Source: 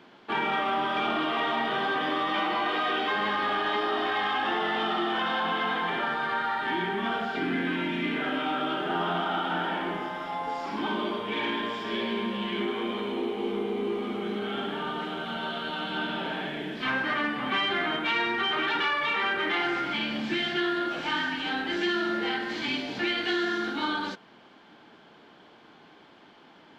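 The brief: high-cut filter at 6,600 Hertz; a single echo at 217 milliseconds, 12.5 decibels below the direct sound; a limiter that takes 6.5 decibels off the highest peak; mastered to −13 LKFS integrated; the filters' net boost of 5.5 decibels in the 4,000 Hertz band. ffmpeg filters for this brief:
ffmpeg -i in.wav -af "lowpass=6600,equalizer=frequency=4000:width_type=o:gain=8,alimiter=limit=-20.5dB:level=0:latency=1,aecho=1:1:217:0.237,volume=15dB" out.wav

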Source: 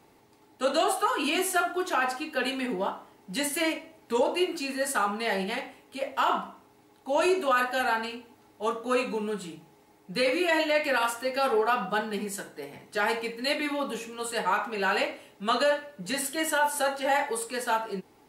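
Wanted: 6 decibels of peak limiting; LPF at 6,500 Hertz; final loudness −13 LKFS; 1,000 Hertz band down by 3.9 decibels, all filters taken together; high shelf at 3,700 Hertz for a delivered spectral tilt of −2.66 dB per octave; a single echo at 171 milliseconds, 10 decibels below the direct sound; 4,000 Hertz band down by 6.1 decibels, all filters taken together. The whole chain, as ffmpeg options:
ffmpeg -i in.wav -af "lowpass=6500,equalizer=frequency=1000:width_type=o:gain=-4.5,highshelf=frequency=3700:gain=-5.5,equalizer=frequency=4000:width_type=o:gain=-4.5,alimiter=limit=-21.5dB:level=0:latency=1,aecho=1:1:171:0.316,volume=19dB" out.wav

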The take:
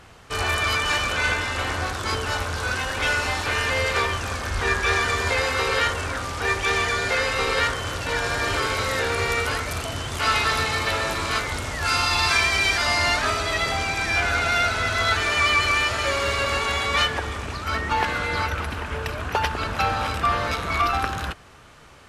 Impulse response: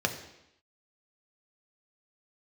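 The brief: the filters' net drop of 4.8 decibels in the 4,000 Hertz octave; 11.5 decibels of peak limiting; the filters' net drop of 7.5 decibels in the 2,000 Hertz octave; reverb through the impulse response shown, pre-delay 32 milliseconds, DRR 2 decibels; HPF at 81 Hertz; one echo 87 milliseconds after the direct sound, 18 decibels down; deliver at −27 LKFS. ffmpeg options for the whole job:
-filter_complex "[0:a]highpass=81,equalizer=frequency=2000:width_type=o:gain=-9,equalizer=frequency=4000:width_type=o:gain=-3,alimiter=limit=-20.5dB:level=0:latency=1,aecho=1:1:87:0.126,asplit=2[link_01][link_02];[1:a]atrim=start_sample=2205,adelay=32[link_03];[link_02][link_03]afir=irnorm=-1:irlink=0,volume=-11dB[link_04];[link_01][link_04]amix=inputs=2:normalize=0"

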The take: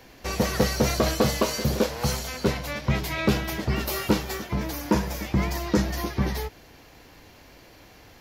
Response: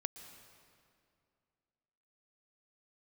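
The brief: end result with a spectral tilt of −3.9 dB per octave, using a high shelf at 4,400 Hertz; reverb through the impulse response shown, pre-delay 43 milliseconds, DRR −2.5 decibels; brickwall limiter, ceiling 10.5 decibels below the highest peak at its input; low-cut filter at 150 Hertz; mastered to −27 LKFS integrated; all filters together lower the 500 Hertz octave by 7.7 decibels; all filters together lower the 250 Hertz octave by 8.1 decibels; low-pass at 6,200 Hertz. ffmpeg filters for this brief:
-filter_complex "[0:a]highpass=150,lowpass=6200,equalizer=frequency=250:width_type=o:gain=-8,equalizer=frequency=500:width_type=o:gain=-7,highshelf=frequency=4400:gain=-6,alimiter=level_in=1dB:limit=-24dB:level=0:latency=1,volume=-1dB,asplit=2[link_01][link_02];[1:a]atrim=start_sample=2205,adelay=43[link_03];[link_02][link_03]afir=irnorm=-1:irlink=0,volume=4dB[link_04];[link_01][link_04]amix=inputs=2:normalize=0,volume=4dB"

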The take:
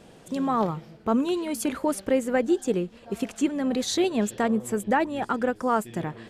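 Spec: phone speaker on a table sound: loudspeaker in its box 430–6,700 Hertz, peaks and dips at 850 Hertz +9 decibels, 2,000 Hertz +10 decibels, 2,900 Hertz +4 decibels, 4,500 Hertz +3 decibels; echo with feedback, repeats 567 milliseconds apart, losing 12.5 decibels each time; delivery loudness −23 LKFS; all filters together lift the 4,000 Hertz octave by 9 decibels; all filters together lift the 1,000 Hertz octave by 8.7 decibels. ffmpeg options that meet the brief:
ffmpeg -i in.wav -af "highpass=frequency=430:width=0.5412,highpass=frequency=430:width=1.3066,equalizer=frequency=850:width_type=q:width=4:gain=9,equalizer=frequency=2000:width_type=q:width=4:gain=10,equalizer=frequency=2900:width_type=q:width=4:gain=4,equalizer=frequency=4500:width_type=q:width=4:gain=3,lowpass=frequency=6700:width=0.5412,lowpass=frequency=6700:width=1.3066,equalizer=frequency=1000:width_type=o:gain=3.5,equalizer=frequency=4000:width_type=o:gain=7,aecho=1:1:567|1134|1701:0.237|0.0569|0.0137,volume=0.5dB" out.wav

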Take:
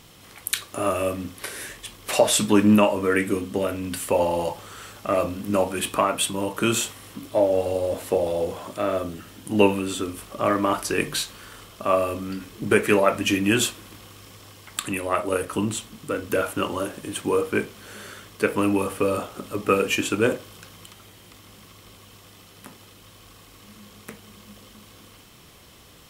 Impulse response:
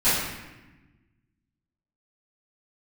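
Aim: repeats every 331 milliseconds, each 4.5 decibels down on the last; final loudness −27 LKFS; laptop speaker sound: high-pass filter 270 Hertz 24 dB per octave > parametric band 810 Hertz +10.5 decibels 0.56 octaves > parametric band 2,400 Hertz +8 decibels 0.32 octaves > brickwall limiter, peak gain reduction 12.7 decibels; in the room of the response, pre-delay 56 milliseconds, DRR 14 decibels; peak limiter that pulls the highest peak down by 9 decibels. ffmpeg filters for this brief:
-filter_complex "[0:a]alimiter=limit=-12.5dB:level=0:latency=1,aecho=1:1:331|662|993|1324|1655|1986|2317|2648|2979:0.596|0.357|0.214|0.129|0.0772|0.0463|0.0278|0.0167|0.01,asplit=2[link_01][link_02];[1:a]atrim=start_sample=2205,adelay=56[link_03];[link_02][link_03]afir=irnorm=-1:irlink=0,volume=-31dB[link_04];[link_01][link_04]amix=inputs=2:normalize=0,highpass=frequency=270:width=0.5412,highpass=frequency=270:width=1.3066,equalizer=frequency=810:width_type=o:width=0.56:gain=10.5,equalizer=frequency=2400:width_type=o:width=0.32:gain=8,alimiter=limit=-18dB:level=0:latency=1"

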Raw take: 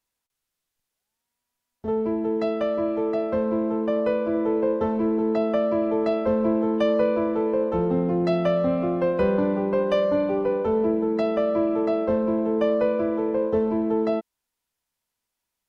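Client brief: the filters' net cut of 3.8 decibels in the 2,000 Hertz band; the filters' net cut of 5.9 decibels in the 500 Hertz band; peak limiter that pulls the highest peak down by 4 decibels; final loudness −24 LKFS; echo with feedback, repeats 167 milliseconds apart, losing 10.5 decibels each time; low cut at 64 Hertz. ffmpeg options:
ffmpeg -i in.wav -af "highpass=64,equalizer=frequency=500:width_type=o:gain=-7,equalizer=frequency=2000:width_type=o:gain=-4.5,alimiter=limit=-18.5dB:level=0:latency=1,aecho=1:1:167|334|501:0.299|0.0896|0.0269,volume=4dB" out.wav

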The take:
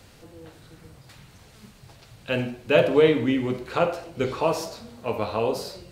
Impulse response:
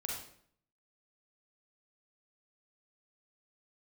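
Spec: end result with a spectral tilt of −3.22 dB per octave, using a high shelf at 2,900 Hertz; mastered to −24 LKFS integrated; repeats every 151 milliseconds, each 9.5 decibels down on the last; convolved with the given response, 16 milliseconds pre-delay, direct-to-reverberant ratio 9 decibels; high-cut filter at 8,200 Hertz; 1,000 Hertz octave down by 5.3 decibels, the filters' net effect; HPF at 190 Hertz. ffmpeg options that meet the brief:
-filter_complex "[0:a]highpass=190,lowpass=8200,equalizer=frequency=1000:width_type=o:gain=-8,highshelf=frequency=2900:gain=5,aecho=1:1:151|302|453|604:0.335|0.111|0.0365|0.012,asplit=2[link_01][link_02];[1:a]atrim=start_sample=2205,adelay=16[link_03];[link_02][link_03]afir=irnorm=-1:irlink=0,volume=-10dB[link_04];[link_01][link_04]amix=inputs=2:normalize=0,volume=1dB"

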